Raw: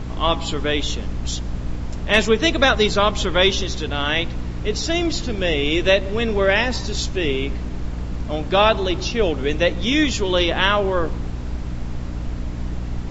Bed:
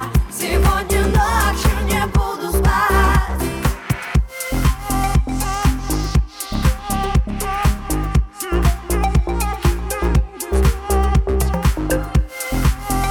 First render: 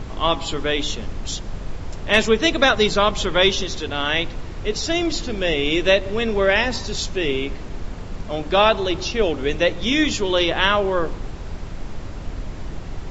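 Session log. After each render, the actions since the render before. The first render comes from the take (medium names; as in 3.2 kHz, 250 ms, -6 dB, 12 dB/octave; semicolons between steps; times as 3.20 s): hum notches 60/120/180/240/300 Hz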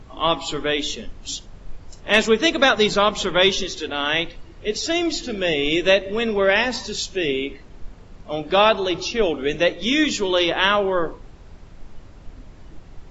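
noise print and reduce 12 dB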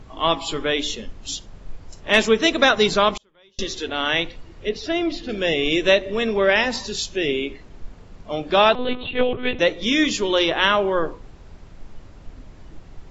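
3.10–3.59 s: inverted gate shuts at -16 dBFS, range -38 dB; 4.69–5.29 s: distance through air 210 m; 8.75–9.59 s: monotone LPC vocoder at 8 kHz 250 Hz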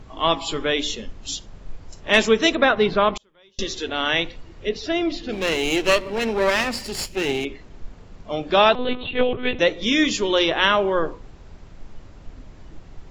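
2.55–3.16 s: Gaussian low-pass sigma 2.6 samples; 5.32–7.45 s: comb filter that takes the minimum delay 0.41 ms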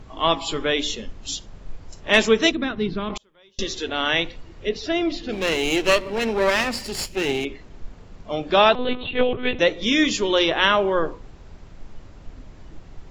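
2.51–3.10 s: FFT filter 330 Hz 0 dB, 540 Hz -16 dB, 5.4 kHz -6 dB, 8.2 kHz -15 dB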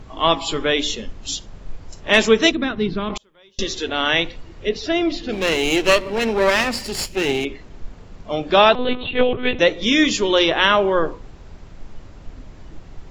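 trim +3 dB; peak limiter -1 dBFS, peak gain reduction 1.5 dB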